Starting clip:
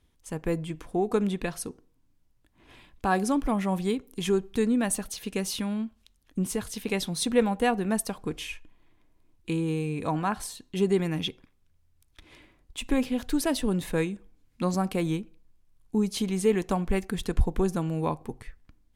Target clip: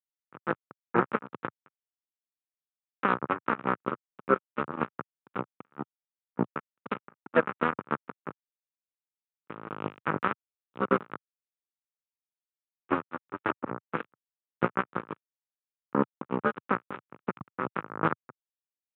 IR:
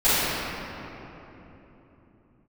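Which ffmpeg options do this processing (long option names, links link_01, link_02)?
-filter_complex "[0:a]acrossover=split=460|1300[link_01][link_02][link_03];[link_01]acompressor=threshold=-30dB:ratio=4[link_04];[link_02]acompressor=threshold=-30dB:ratio=4[link_05];[link_03]acompressor=threshold=-41dB:ratio=4[link_06];[link_04][link_05][link_06]amix=inputs=3:normalize=0,flanger=delay=5.3:depth=4.6:regen=72:speed=1.1:shape=sinusoidal,asplit=2[link_07][link_08];[link_08]asetrate=58866,aresample=44100,atempo=0.749154,volume=-3dB[link_09];[link_07][link_09]amix=inputs=2:normalize=0,aresample=8000,acrusher=bits=3:mix=0:aa=0.5,aresample=44100,highpass=frequency=120:width=0.5412,highpass=frequency=120:width=1.3066,equalizer=frequency=690:width_type=q:width=4:gain=-9,equalizer=frequency=1300:width_type=q:width=4:gain=8,equalizer=frequency=2000:width_type=q:width=4:gain=-4,lowpass=frequency=2300:width=0.5412,lowpass=frequency=2300:width=1.3066,volume=8dB"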